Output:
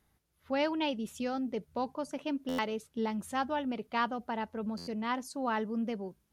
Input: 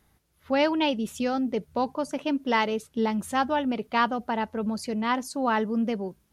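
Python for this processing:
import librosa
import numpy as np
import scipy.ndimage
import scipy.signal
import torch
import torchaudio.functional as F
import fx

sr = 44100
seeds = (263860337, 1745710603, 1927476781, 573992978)

y = fx.buffer_glitch(x, sr, at_s=(2.48, 4.77), block=512, repeats=8)
y = F.gain(torch.from_numpy(y), -7.5).numpy()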